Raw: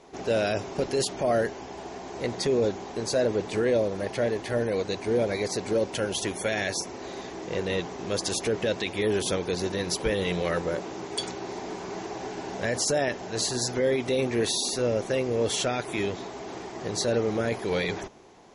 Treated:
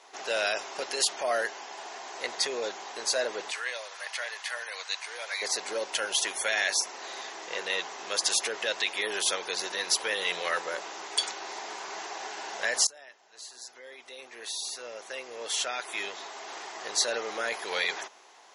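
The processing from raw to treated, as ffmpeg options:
ffmpeg -i in.wav -filter_complex "[0:a]asettb=1/sr,asplit=3[link_01][link_02][link_03];[link_01]atrim=end=3.514[link_04];[link_02]atrim=start=3.51:end=5.42,asetpts=PTS-STARTPTS,afade=type=in:duration=0.004:curve=qsin,afade=type=out:start_time=1.906:duration=0.004:curve=qsin,highpass=1100[link_05];[link_03]atrim=start=5.416[link_06];[link_04][link_05]acrossfade=duration=0.004:curve1=hsin:curve2=qsin[link_07];[link_07][link_06]acrossfade=duration=0.004:curve1=qsin:curve2=hsin,asplit=2[link_08][link_09];[link_08]atrim=end=12.87,asetpts=PTS-STARTPTS,afade=type=out:start_time=12.866:duration=0.004:curve=hsin:silence=0.0749894[link_10];[link_09]atrim=start=12.87,asetpts=PTS-STARTPTS,afade=type=in:duration=3.74:curve=qua:silence=0.0749894[link_11];[link_10][link_11]concat=n=2:v=0:a=1,highpass=1000,bandreject=frequency=2300:width=26,volume=4.5dB" out.wav

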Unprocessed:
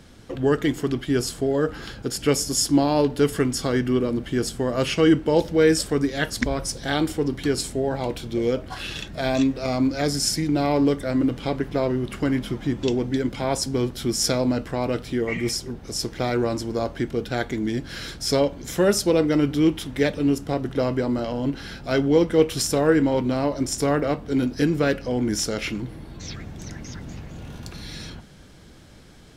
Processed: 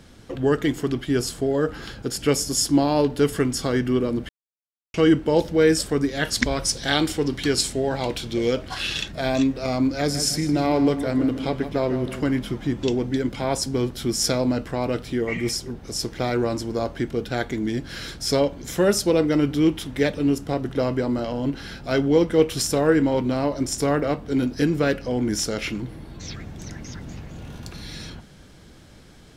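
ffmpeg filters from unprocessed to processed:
ffmpeg -i in.wav -filter_complex "[0:a]asettb=1/sr,asplit=3[link_01][link_02][link_03];[link_01]atrim=end=6.254[link_04];[link_02]atrim=start=6.25:end=9.12,asetpts=PTS-STARTPTS,afade=type=in:duration=0.004:curve=qsin,afade=type=out:start_time=2.866:duration=0.004:curve=qsin,equalizer=frequency=4300:width_type=o:width=2.8:gain=7[link_05];[link_03]atrim=start=9.116[link_06];[link_04][link_05]acrossfade=duration=0.004:curve1=hsin:curve2=qsin[link_07];[link_07][link_06]acrossfade=duration=0.004:curve1=qsin:curve2=hsin,asettb=1/sr,asplit=3[link_08][link_09][link_10];[link_08]atrim=end=9.944[link_11];[link_09]atrim=start=9.94:end=12.23,asetpts=PTS-STARTPTS,afade=type=in:duration=0.004:curve=qsin,afade=type=out:start_time=2.286:duration=0.004:curve=qsin,asplit=2[link_12][link_13];[link_13]adelay=157,lowpass=frequency=4000:poles=1,volume=-10.5dB,asplit=2[link_14][link_15];[link_15]adelay=157,lowpass=frequency=4000:poles=1,volume=0.46,asplit=2[link_16][link_17];[link_17]adelay=157,lowpass=frequency=4000:poles=1,volume=0.46,asplit=2[link_18][link_19];[link_19]adelay=157,lowpass=frequency=4000:poles=1,volume=0.46,asplit=2[link_20][link_21];[link_21]adelay=157,lowpass=frequency=4000:poles=1,volume=0.46[link_22];[link_12][link_14][link_16][link_18][link_20][link_22]amix=inputs=6:normalize=0,atrim=end_sample=100989[link_23];[link_10]atrim=start=12.226[link_24];[link_11][link_23]acrossfade=duration=0.004:curve1=hsin:curve2=qsin[link_25];[link_25][link_24]acrossfade=duration=0.004:curve1=qsin:curve2=hsin,asplit=3[link_26][link_27][link_28];[link_26]atrim=end=4.29,asetpts=PTS-STARTPTS,afade=type=out:start_time=4.286:duration=0.004:curve=hsin[link_29];[link_27]atrim=start=4.29:end=4.94,asetpts=PTS-STARTPTS,volume=0[link_30];[link_28]atrim=start=4.94,asetpts=PTS-STARTPTS,afade=type=in:duration=0.004:curve=hsin[link_31];[link_29][link_30][link_31]concat=n=3:v=0:a=1" out.wav

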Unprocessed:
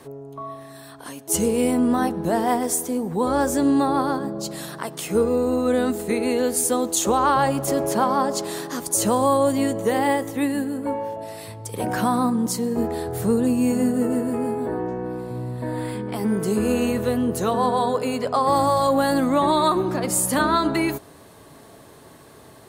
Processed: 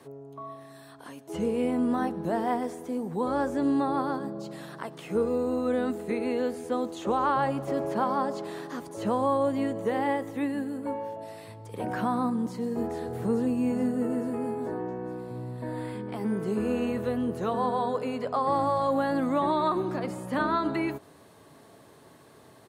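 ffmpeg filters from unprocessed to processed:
ffmpeg -i in.wav -filter_complex "[0:a]asplit=2[link_01][link_02];[link_02]afade=type=in:start_time=12.35:duration=0.01,afade=type=out:start_time=13.01:duration=0.01,aecho=0:1:430|860|1290|1720|2150|2580:0.281838|0.155011|0.0852561|0.0468908|0.02579|0.0141845[link_03];[link_01][link_03]amix=inputs=2:normalize=0,acrossover=split=3200[link_04][link_05];[link_05]acompressor=threshold=-45dB:ratio=4:attack=1:release=60[link_06];[link_04][link_06]amix=inputs=2:normalize=0,highpass=85,highshelf=frequency=7500:gain=-5,volume=-6.5dB" out.wav

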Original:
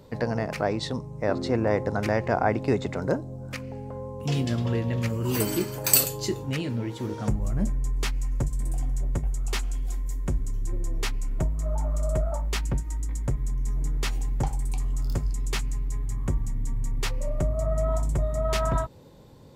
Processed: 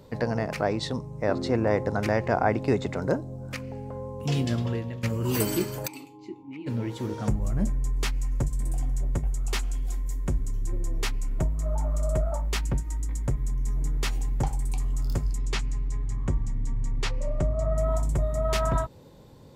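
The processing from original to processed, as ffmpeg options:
ffmpeg -i in.wav -filter_complex "[0:a]asplit=3[link_01][link_02][link_03];[link_01]afade=type=out:start_time=5.86:duration=0.02[link_04];[link_02]asplit=3[link_05][link_06][link_07];[link_05]bandpass=frequency=300:width_type=q:width=8,volume=0dB[link_08];[link_06]bandpass=frequency=870:width_type=q:width=8,volume=-6dB[link_09];[link_07]bandpass=frequency=2240:width_type=q:width=8,volume=-9dB[link_10];[link_08][link_09][link_10]amix=inputs=3:normalize=0,afade=type=in:start_time=5.86:duration=0.02,afade=type=out:start_time=6.66:duration=0.02[link_11];[link_03]afade=type=in:start_time=6.66:duration=0.02[link_12];[link_04][link_11][link_12]amix=inputs=3:normalize=0,asettb=1/sr,asplit=3[link_13][link_14][link_15];[link_13]atrim=end=15.384[link_16];[link_14]atrim=start=15.38:end=17.78,asetpts=PTS-STARTPTS,afade=type=in:duration=0.004:curve=qsin,afade=type=out:start_time=2.396:duration=0.004:curve=qsin,lowpass=6800[link_17];[link_15]atrim=start=17.776[link_18];[link_16][link_17]acrossfade=duration=0.004:curve1=hsin:curve2=qsin[link_19];[link_19][link_18]acrossfade=duration=0.004:curve1=qsin:curve2=hsin,asplit=2[link_20][link_21];[link_20]atrim=end=5.03,asetpts=PTS-STARTPTS,afade=type=out:start_time=4.55:duration=0.48:silence=0.237137[link_22];[link_21]atrim=start=5.03,asetpts=PTS-STARTPTS,afade=type=in:duration=0.004:curve=hsin:silence=0.237137[link_23];[link_22][link_23]concat=n=2:v=0:a=1" out.wav

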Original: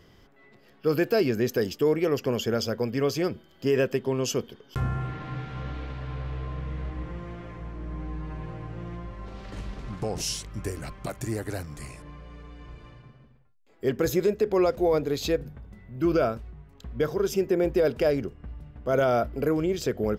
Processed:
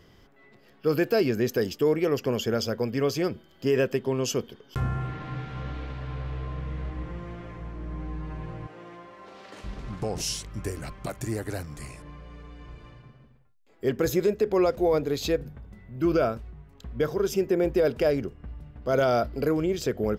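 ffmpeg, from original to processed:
ffmpeg -i in.wav -filter_complex "[0:a]asettb=1/sr,asplit=3[link_01][link_02][link_03];[link_01]atrim=end=8.674[link_04];[link_02]atrim=start=8.67:end=9.64,asetpts=PTS-STARTPTS,afade=type=in:duration=0.004:curve=qsin,afade=type=out:start_time=0.966:duration=0.004:curve=qsin,highpass=360[link_05];[link_03]atrim=start=9.636[link_06];[link_04][link_05]acrossfade=duration=0.004:curve1=hsin:curve2=qsin[link_07];[link_07][link_06]acrossfade=duration=0.004:curve1=qsin:curve2=hsin,asettb=1/sr,asplit=3[link_08][link_09][link_10];[link_08]atrim=end=18.824[link_11];[link_09]atrim=start=18.82:end=19.52,asetpts=PTS-STARTPTS,afade=type=in:duration=0.004:curve=qsin,afade=type=out:start_time=0.696:duration=0.004:curve=qsin,equalizer=frequency=4500:width_type=o:width=0.46:gain=10.5[link_12];[link_10]atrim=start=19.516[link_13];[link_11][link_12]acrossfade=duration=0.004:curve1=hsin:curve2=qsin[link_14];[link_14][link_13]acrossfade=duration=0.004:curve1=qsin:curve2=hsin" out.wav

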